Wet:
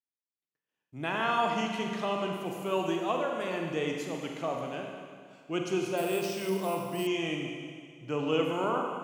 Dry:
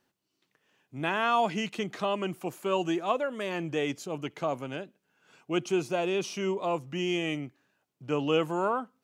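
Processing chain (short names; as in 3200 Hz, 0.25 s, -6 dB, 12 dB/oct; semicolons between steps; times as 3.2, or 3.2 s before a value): expander -58 dBFS; Schroeder reverb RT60 2 s, combs from 32 ms, DRR 1 dB; 5.97–7.07 careless resampling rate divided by 4×, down none, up hold; gain -3.5 dB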